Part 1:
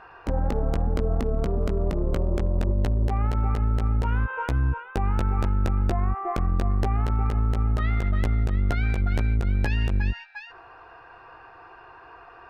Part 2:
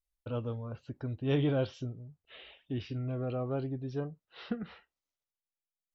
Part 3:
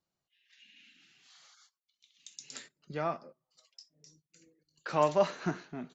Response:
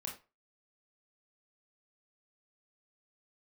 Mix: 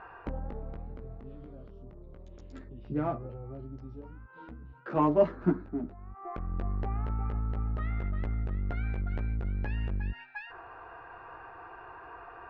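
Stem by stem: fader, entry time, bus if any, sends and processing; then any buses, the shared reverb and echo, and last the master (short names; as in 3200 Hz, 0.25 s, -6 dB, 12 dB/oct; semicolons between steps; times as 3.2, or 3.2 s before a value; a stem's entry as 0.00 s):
+0.5 dB, 0.00 s, no send, de-hum 127.5 Hz, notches 15; compressor, threshold -29 dBFS, peak gain reduction 9.5 dB; auto duck -17 dB, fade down 1.50 s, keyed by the third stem
2.58 s -11 dB -> 2.87 s -4 dB -> 4.13 s -4 dB -> 4.76 s -11.5 dB, 0.00 s, no send, bell 1700 Hz -14 dB 1.4 oct; compressor, threshold -34 dBFS, peak gain reduction 9 dB; endless flanger 9.2 ms -0.43 Hz
+0.5 dB, 0.00 s, no send, Wiener smoothing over 15 samples; bell 280 Hz +14.5 dB 1.2 oct; chorus voices 2, 0.51 Hz, delay 12 ms, depth 2.4 ms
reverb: off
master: LPF 2200 Hz 12 dB/oct; core saturation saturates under 160 Hz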